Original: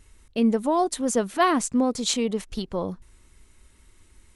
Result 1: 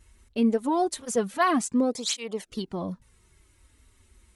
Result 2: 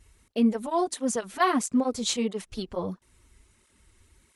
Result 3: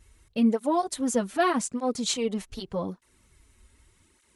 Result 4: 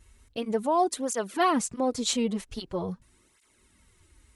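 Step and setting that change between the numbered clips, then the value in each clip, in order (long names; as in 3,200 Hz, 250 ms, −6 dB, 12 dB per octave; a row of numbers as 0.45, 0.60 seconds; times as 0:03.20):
through-zero flanger with one copy inverted, nulls at: 0.23, 1.5, 0.83, 0.44 Hertz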